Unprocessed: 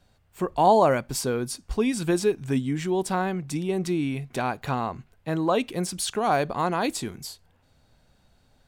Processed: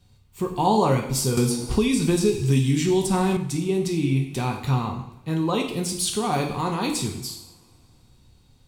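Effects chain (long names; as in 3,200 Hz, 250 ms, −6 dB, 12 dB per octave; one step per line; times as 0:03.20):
graphic EQ with 15 bands 100 Hz +6 dB, 630 Hz −12 dB, 1,600 Hz −11 dB
coupled-rooms reverb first 0.7 s, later 3.4 s, from −27 dB, DRR 1 dB
0:01.37–0:03.37: multiband upward and downward compressor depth 100%
level +2.5 dB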